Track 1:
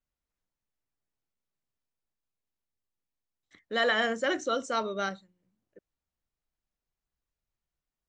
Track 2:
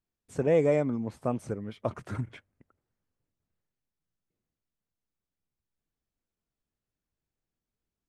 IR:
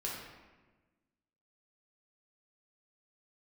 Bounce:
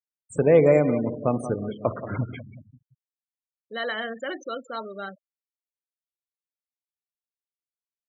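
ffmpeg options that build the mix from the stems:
-filter_complex "[0:a]volume=0.668,asplit=2[s0][s1];[s1]volume=0.0891[s2];[1:a]highpass=96,highshelf=f=5900:g=8,acontrast=62,volume=0.841,asplit=3[s3][s4][s5];[s4]volume=0.316[s6];[s5]volume=0.316[s7];[2:a]atrim=start_sample=2205[s8];[s6][s8]afir=irnorm=-1:irlink=0[s9];[s2][s7]amix=inputs=2:normalize=0,aecho=0:1:181|362|543|724|905|1086|1267:1|0.49|0.24|0.118|0.0576|0.0282|0.0138[s10];[s0][s3][s9][s10]amix=inputs=4:normalize=0,afftfilt=real='re*gte(hypot(re,im),0.0224)':imag='im*gte(hypot(re,im),0.0224)':win_size=1024:overlap=0.75"

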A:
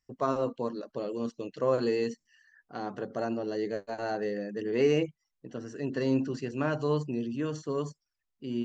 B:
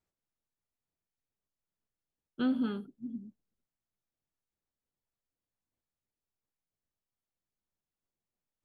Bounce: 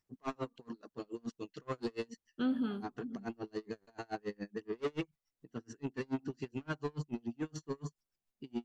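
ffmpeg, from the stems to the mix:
-filter_complex "[0:a]equalizer=f=560:t=o:w=0.37:g=-13.5,asoftclip=type=tanh:threshold=0.0335,aeval=exprs='val(0)*pow(10,-36*(0.5-0.5*cos(2*PI*7*n/s))/20)':c=same,volume=1.19[s0];[1:a]volume=0.708[s1];[s0][s1]amix=inputs=2:normalize=0"

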